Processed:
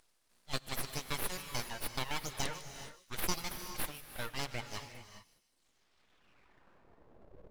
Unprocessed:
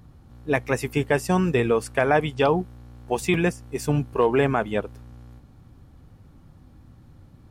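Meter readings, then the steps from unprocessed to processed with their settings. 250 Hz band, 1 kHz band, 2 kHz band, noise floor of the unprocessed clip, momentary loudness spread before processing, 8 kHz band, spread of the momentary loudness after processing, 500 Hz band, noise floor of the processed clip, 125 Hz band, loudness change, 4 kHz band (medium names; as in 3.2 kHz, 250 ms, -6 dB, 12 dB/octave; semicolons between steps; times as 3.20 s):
-22.5 dB, -16.5 dB, -14.5 dB, -52 dBFS, 9 LU, -2.5 dB, 11 LU, -25.0 dB, -74 dBFS, -19.5 dB, -16.5 dB, -3.0 dB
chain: band-pass sweep 5.1 kHz -> 270 Hz, 5.48–7.44 s; reverb removal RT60 1.4 s; full-wave rectifier; feedback echo behind a high-pass 152 ms, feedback 45%, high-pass 3.2 kHz, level -13 dB; gated-style reverb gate 450 ms rising, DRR 8.5 dB; trim +8 dB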